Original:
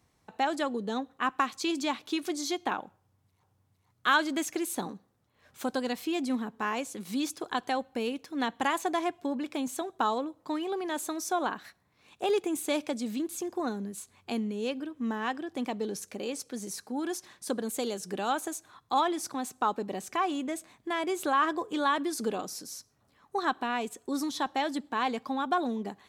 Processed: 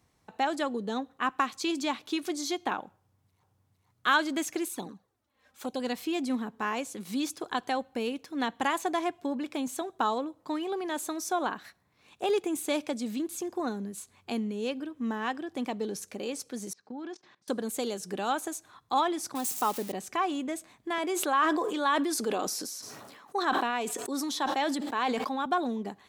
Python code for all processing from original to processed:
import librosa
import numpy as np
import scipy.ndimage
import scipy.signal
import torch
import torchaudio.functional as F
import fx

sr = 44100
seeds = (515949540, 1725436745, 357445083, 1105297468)

y = fx.chain(x, sr, fx.low_shelf(hz=340.0, db=-4.0),
    fx.env_flanger(rest_ms=4.2, full_db=-30.0), at=(4.68, 5.8))
y = fx.chain(y, sr, fx.level_steps(step_db=19),
    fx.bandpass_edges(low_hz=130.0, high_hz=6800.0),
    fx.air_absorb(metres=120.0), at=(16.73, 17.48))
y = fx.chain(y, sr, fx.crossing_spikes(level_db=-28.0),
    fx.peak_eq(hz=1500.0, db=-4.5, octaves=0.24), at=(19.35, 19.92))
y = fx.chain(y, sr, fx.highpass(hz=260.0, slope=12),
    fx.sustainer(db_per_s=28.0), at=(20.98, 25.46))